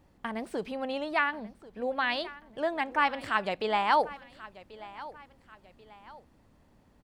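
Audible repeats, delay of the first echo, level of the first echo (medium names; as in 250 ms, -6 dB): 2, 1087 ms, -18.0 dB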